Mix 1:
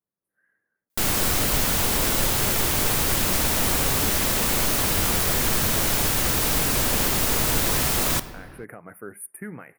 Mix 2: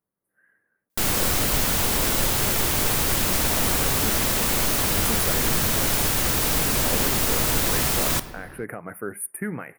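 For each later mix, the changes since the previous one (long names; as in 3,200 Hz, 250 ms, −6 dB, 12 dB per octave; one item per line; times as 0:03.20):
speech +6.5 dB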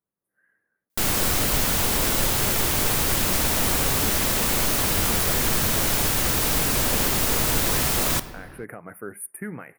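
speech −4.0 dB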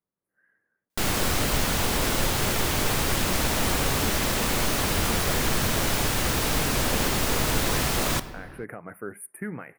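master: add high-shelf EQ 8,100 Hz −9 dB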